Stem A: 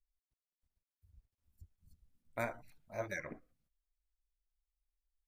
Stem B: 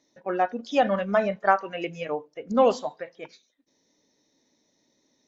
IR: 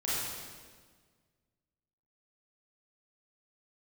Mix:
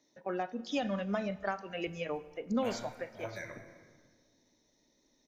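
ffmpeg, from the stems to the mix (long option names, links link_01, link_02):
-filter_complex "[0:a]adelay=250,volume=-4dB,asplit=2[link_01][link_02];[link_02]volume=-11dB[link_03];[1:a]acrossover=split=240|3000[link_04][link_05][link_06];[link_05]acompressor=threshold=-31dB:ratio=6[link_07];[link_04][link_07][link_06]amix=inputs=3:normalize=0,volume=-3.5dB,asplit=3[link_08][link_09][link_10];[link_09]volume=-23dB[link_11];[link_10]apad=whole_len=243759[link_12];[link_01][link_12]sidechaincompress=threshold=-38dB:ratio=8:attack=16:release=100[link_13];[2:a]atrim=start_sample=2205[link_14];[link_03][link_11]amix=inputs=2:normalize=0[link_15];[link_15][link_14]afir=irnorm=-1:irlink=0[link_16];[link_13][link_08][link_16]amix=inputs=3:normalize=0"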